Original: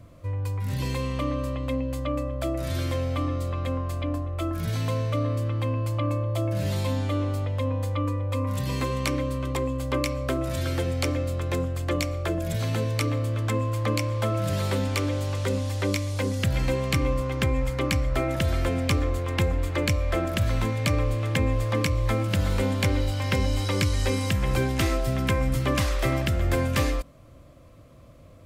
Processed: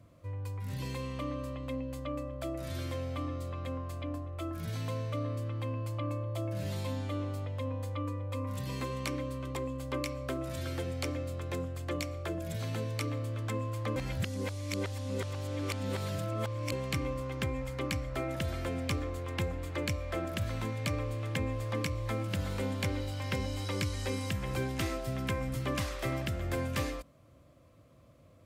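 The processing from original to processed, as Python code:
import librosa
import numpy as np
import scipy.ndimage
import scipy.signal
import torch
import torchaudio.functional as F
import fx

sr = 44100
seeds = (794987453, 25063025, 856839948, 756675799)

y = fx.edit(x, sr, fx.reverse_span(start_s=13.96, length_s=2.76), tone=tone)
y = scipy.signal.sosfilt(scipy.signal.butter(2, 70.0, 'highpass', fs=sr, output='sos'), y)
y = y * 10.0 ** (-8.5 / 20.0)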